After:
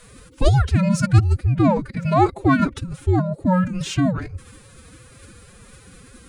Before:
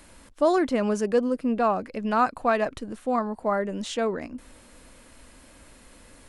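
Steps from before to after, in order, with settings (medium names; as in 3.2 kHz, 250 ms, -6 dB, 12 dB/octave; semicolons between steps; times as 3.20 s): frequency shift -300 Hz; dynamic bell 210 Hz, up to +4 dB, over -41 dBFS, Q 1.3; formant-preserving pitch shift +10.5 st; trim +6 dB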